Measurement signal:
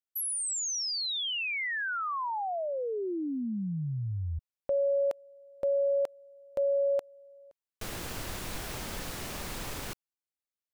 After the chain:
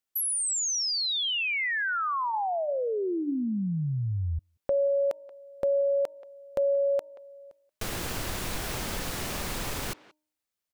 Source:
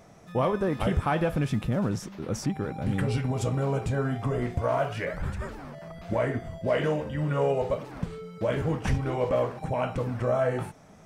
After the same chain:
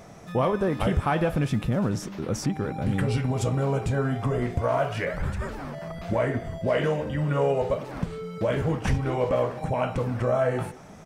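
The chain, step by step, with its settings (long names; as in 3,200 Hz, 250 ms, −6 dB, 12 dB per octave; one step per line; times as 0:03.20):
far-end echo of a speakerphone 180 ms, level −20 dB
in parallel at +1 dB: downward compressor, threshold −37 dBFS
on the sum: hum removal 305.3 Hz, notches 3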